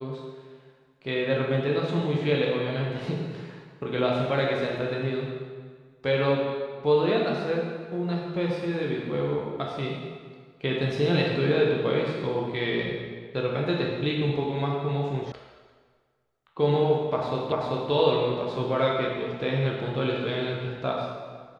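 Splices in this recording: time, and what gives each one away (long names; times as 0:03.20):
0:15.32: cut off before it has died away
0:17.52: the same again, the last 0.39 s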